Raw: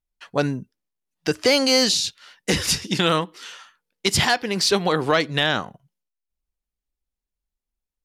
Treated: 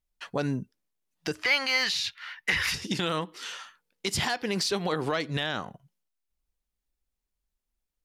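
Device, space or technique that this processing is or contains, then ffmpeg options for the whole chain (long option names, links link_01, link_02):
stacked limiters: -filter_complex "[0:a]alimiter=limit=-13.5dB:level=0:latency=1:release=146,alimiter=limit=-19.5dB:level=0:latency=1:release=368,asettb=1/sr,asplit=3[link_01][link_02][link_03];[link_01]atrim=end=1.434[link_04];[link_02]atrim=start=1.43:end=2.74,asetpts=PTS-STARTPTS,afade=type=in:duration=0.004:curve=qsin,afade=type=out:start_time=1.306:duration=0.004:curve=qsin,equalizer=frequency=125:width_type=o:width=1:gain=-3,equalizer=frequency=250:width_type=o:width=1:gain=-11,equalizer=frequency=500:width_type=o:width=1:gain=-8,equalizer=frequency=1000:width_type=o:width=1:gain=5,equalizer=frequency=2000:width_type=o:width=1:gain=12,equalizer=frequency=8000:width_type=o:width=1:gain=-10[link_05];[link_03]atrim=start=2.736[link_06];[link_04][link_05]acrossfade=duration=0.004:curve1=hsin:curve2=qsin[link_07];[link_07][link_06]acrossfade=duration=0.004:curve1=qsin:curve2=hsin,volume=1.5dB"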